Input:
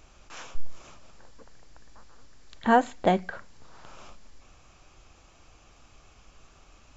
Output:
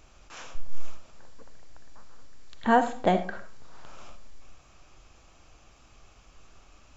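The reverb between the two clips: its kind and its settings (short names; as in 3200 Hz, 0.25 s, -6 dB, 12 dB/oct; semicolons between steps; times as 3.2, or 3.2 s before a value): digital reverb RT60 0.46 s, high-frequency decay 0.5×, pre-delay 25 ms, DRR 10 dB; gain -1 dB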